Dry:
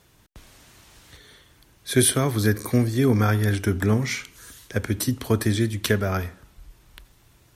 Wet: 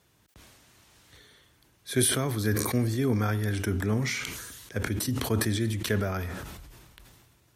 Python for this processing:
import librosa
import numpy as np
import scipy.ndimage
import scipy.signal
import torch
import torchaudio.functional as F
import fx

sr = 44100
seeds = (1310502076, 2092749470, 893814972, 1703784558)

y = scipy.signal.sosfilt(scipy.signal.butter(2, 60.0, 'highpass', fs=sr, output='sos'), x)
y = fx.sustainer(y, sr, db_per_s=34.0)
y = F.gain(torch.from_numpy(y), -7.0).numpy()